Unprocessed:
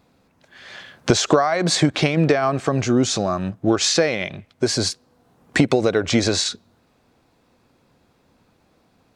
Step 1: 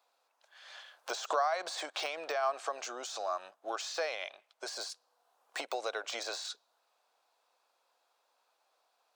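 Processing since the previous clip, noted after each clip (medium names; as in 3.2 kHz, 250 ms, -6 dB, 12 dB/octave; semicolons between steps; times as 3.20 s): de-esser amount 60%; high-pass 650 Hz 24 dB/octave; peaking EQ 2 kHz -7 dB 0.63 oct; trim -8.5 dB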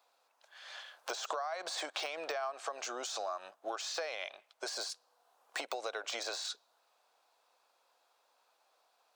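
compression 6:1, threshold -37 dBFS, peak gain reduction 11.5 dB; trim +2.5 dB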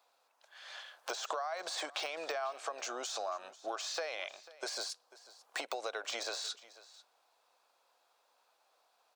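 delay 493 ms -19 dB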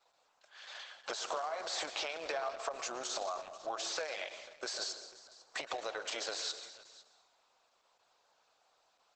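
on a send at -9.5 dB: reverberation RT60 1.1 s, pre-delay 102 ms; on the sum: trim +1 dB; Opus 10 kbps 48 kHz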